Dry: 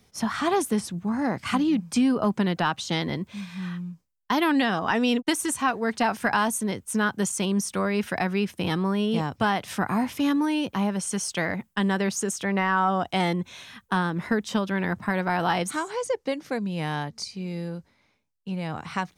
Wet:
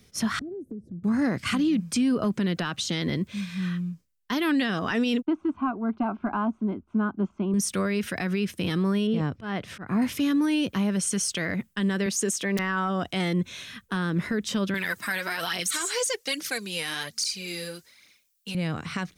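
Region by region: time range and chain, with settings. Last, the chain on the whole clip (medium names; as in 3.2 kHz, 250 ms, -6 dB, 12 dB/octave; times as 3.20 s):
0.39–1.04 s: inverse Chebyshev low-pass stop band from 1 kHz + compression, threshold -38 dBFS
5.25–7.54 s: low-pass 1.8 kHz 24 dB/octave + static phaser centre 490 Hz, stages 6
9.07–10.02 s: low-pass 1.5 kHz 6 dB/octave + slow attack 195 ms
12.06–12.59 s: high-pass 200 Hz + band-stop 1.4 kHz, Q 8.4 + integer overflow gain 14 dB
14.74–18.55 s: tilt EQ +4.5 dB/octave + phaser 1.2 Hz, delay 4.3 ms, feedback 52%
whole clip: peaking EQ 850 Hz -11.5 dB 0.75 oct; peak limiter -21.5 dBFS; trim +4 dB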